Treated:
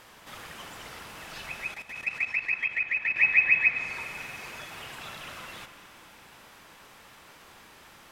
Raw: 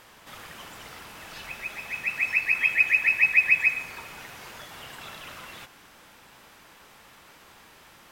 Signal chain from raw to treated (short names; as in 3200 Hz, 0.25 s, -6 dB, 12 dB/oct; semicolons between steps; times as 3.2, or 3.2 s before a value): treble ducked by the level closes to 3000 Hz, closed at -17.5 dBFS; spring tank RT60 3.9 s, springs 39 ms, chirp 70 ms, DRR 11 dB; 1.74–3.16 level quantiser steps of 13 dB